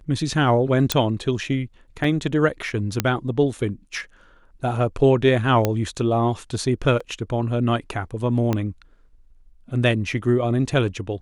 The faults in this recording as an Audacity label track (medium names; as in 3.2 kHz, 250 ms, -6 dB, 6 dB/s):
0.920000	0.920000	pop -3 dBFS
2.040000	2.040000	dropout 3.9 ms
3.000000	3.000000	pop -4 dBFS
5.650000	5.650000	pop -6 dBFS
7.000000	7.000000	dropout 4.8 ms
8.530000	8.530000	pop -10 dBFS